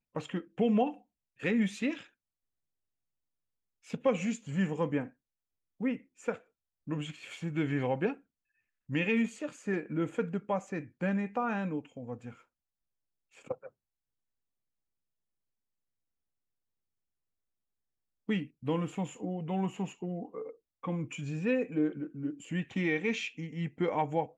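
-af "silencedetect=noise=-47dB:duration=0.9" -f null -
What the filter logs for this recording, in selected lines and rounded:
silence_start: 2.04
silence_end: 3.87 | silence_duration: 1.83
silence_start: 12.33
silence_end: 13.37 | silence_duration: 1.04
silence_start: 13.68
silence_end: 18.29 | silence_duration: 4.61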